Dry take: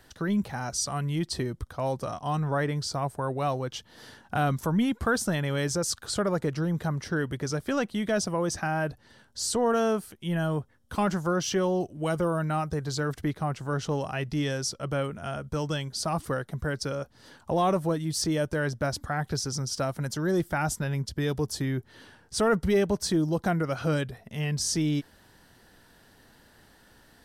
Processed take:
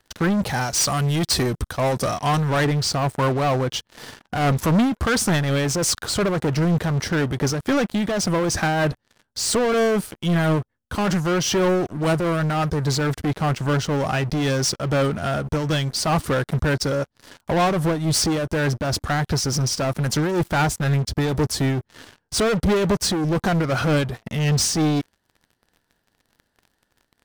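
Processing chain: 0.46–2.65 high shelf 2700 Hz +10 dB; sample leveller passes 5; high shelf 7500 Hz -4 dB; noise-modulated level, depth 60%; gain -2.5 dB

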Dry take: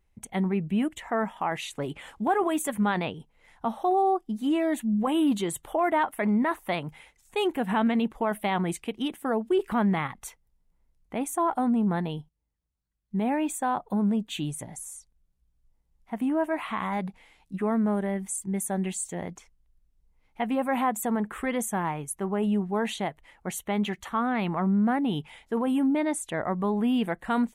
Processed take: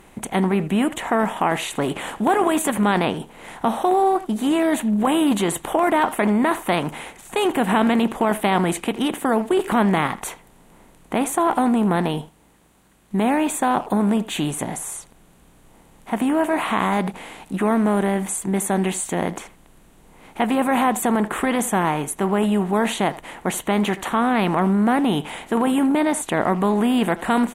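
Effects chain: per-bin compression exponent 0.6; speakerphone echo 80 ms, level -15 dB; gain +3.5 dB

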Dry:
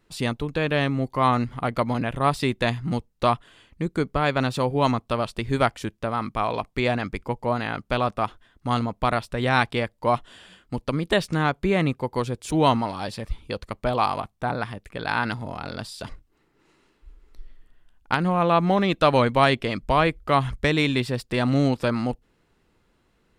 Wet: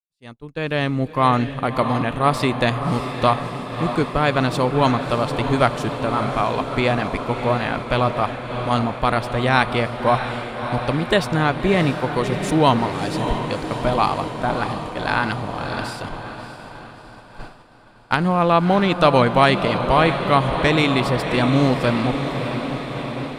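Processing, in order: opening faded in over 1.03 s; diffused feedback echo 0.638 s, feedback 74%, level -8.5 dB; expander -29 dBFS; gain +3.5 dB

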